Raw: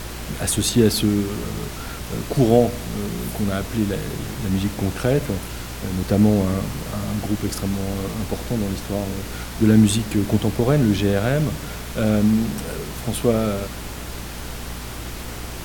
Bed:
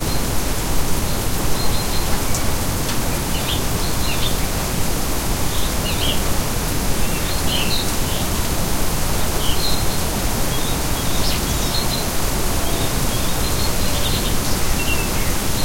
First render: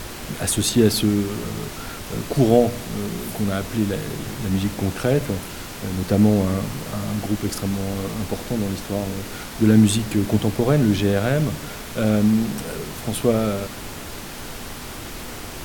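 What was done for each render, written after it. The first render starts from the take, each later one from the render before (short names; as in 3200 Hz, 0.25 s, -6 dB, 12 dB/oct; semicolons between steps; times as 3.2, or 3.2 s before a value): de-hum 60 Hz, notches 3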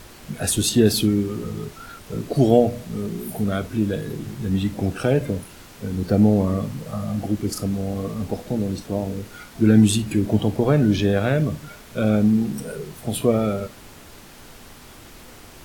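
noise print and reduce 10 dB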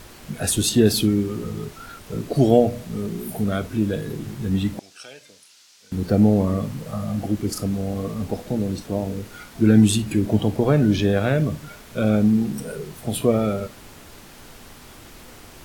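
4.79–5.92 band-pass 5300 Hz, Q 1.5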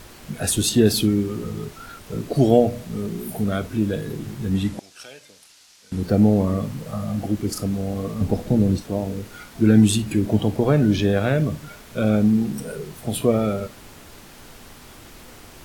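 4.55–6.02 CVSD 64 kbps; 8.21–8.78 low shelf 350 Hz +8.5 dB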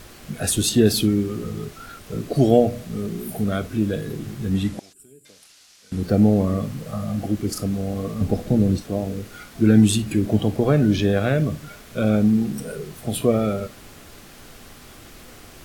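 4.93–5.25 spectral gain 440–7000 Hz -26 dB; notch 920 Hz, Q 8.9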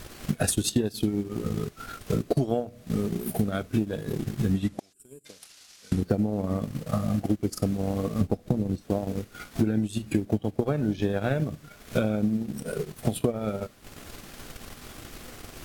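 transient shaper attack +9 dB, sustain -12 dB; compressor 10:1, threshold -21 dBFS, peak gain reduction 16.5 dB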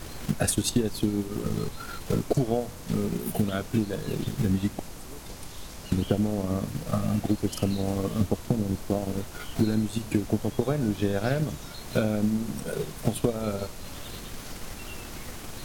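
add bed -21.5 dB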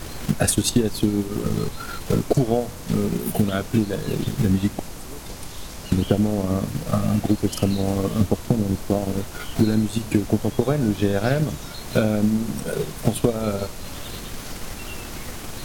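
gain +5.5 dB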